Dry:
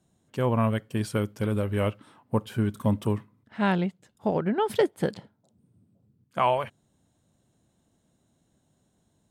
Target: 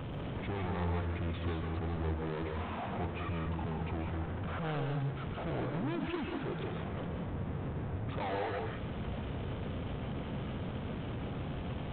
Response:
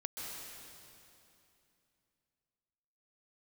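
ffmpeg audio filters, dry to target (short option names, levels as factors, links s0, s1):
-filter_complex "[0:a]aeval=exprs='val(0)+0.5*0.0398*sgn(val(0))':c=same,highshelf=f=2900:g=-10,asplit=2[s0][s1];[s1]acompressor=threshold=0.0282:ratio=6,volume=0.708[s2];[s0][s2]amix=inputs=2:normalize=0,asetrate=34398,aresample=44100,aresample=8000,asoftclip=type=hard:threshold=0.0531,aresample=44100[s3];[1:a]atrim=start_sample=2205,afade=t=out:st=0.26:d=0.01,atrim=end_sample=11907[s4];[s3][s4]afir=irnorm=-1:irlink=0,volume=0.501"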